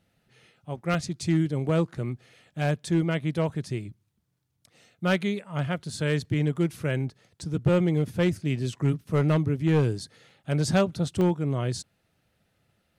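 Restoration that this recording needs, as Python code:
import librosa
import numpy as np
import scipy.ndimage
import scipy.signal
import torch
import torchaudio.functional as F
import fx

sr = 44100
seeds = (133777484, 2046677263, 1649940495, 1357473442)

y = fx.fix_declip(x, sr, threshold_db=-15.5)
y = fx.fix_interpolate(y, sr, at_s=(0.94, 4.13, 6.25, 6.56, 10.3, 11.21), length_ms=1.6)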